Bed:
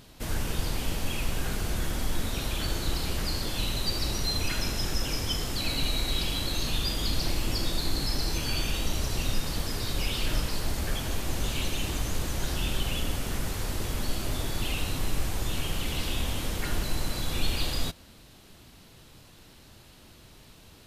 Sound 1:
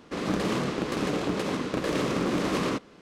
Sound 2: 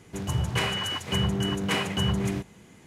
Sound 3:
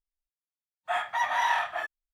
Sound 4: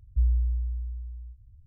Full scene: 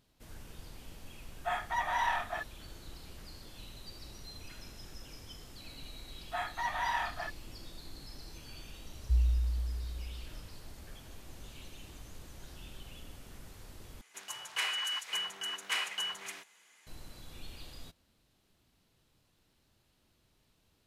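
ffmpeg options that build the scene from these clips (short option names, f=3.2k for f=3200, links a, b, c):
-filter_complex "[3:a]asplit=2[a][b];[0:a]volume=-19.5dB[c];[a]equalizer=f=350:t=o:w=1.8:g=4.5[d];[4:a]highpass=60[e];[2:a]highpass=1.3k[f];[c]asplit=2[g][h];[g]atrim=end=14.014[i];[f]atrim=end=2.86,asetpts=PTS-STARTPTS,volume=-3.5dB[j];[h]atrim=start=16.866[k];[d]atrim=end=2.13,asetpts=PTS-STARTPTS,volume=-6.5dB,afade=t=in:d=0.004:c=hsin,afade=t=out:st=2.126:d=0.004:c=hsin,adelay=570[l];[b]atrim=end=2.13,asetpts=PTS-STARTPTS,volume=-7.5dB,afade=t=in:d=0.004:c=hsin,afade=t=out:st=2.126:d=0.004:c=hsin,adelay=5440[m];[e]atrim=end=1.66,asetpts=PTS-STARTPTS,volume=-1dB,afade=t=in:d=0.004:c=hsin,afade=t=out:st=1.656:d=0.004:c=hsin,adelay=8930[n];[i][j]acrossfade=d=0.004:c1=hsin:c2=hsin[o];[o][k]acrossfade=d=0.004:c1=hsin:c2=hsin[p];[p][l][m][n]amix=inputs=4:normalize=0"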